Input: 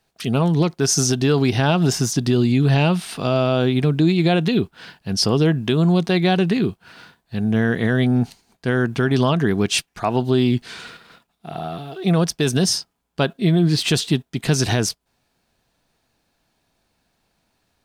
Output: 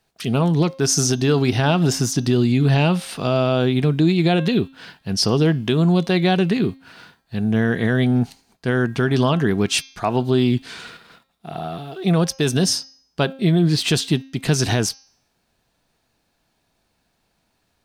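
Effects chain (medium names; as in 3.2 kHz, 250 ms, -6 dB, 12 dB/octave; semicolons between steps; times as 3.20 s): de-hum 267.5 Hz, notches 24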